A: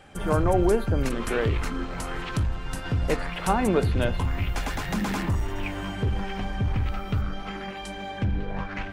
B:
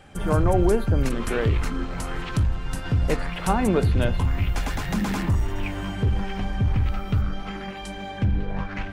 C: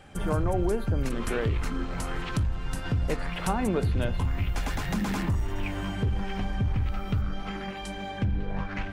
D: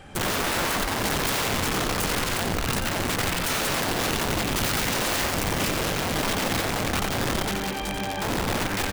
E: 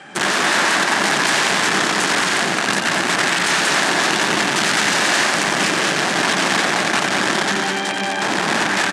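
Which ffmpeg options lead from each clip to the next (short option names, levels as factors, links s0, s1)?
-af "bass=f=250:g=4,treble=f=4000:g=1"
-af "acompressor=threshold=0.0631:ratio=2,volume=0.841"
-filter_complex "[0:a]aeval=exprs='(mod(22.4*val(0)+1,2)-1)/22.4':c=same,asplit=7[s0][s1][s2][s3][s4][s5][s6];[s1]adelay=89,afreqshift=80,volume=0.447[s7];[s2]adelay=178,afreqshift=160,volume=0.237[s8];[s3]adelay=267,afreqshift=240,volume=0.126[s9];[s4]adelay=356,afreqshift=320,volume=0.0668[s10];[s5]adelay=445,afreqshift=400,volume=0.0351[s11];[s6]adelay=534,afreqshift=480,volume=0.0186[s12];[s0][s7][s8][s9][s10][s11][s12]amix=inputs=7:normalize=0,volume=1.88"
-af "highpass=f=190:w=0.5412,highpass=f=190:w=1.3066,equalizer=f=250:t=q:w=4:g=-6,equalizer=f=490:t=q:w=4:g=-8,equalizer=f=1700:t=q:w=4:g=6,lowpass=f=8900:w=0.5412,lowpass=f=8900:w=1.3066,aecho=1:1:211:0.531,volume=2.51"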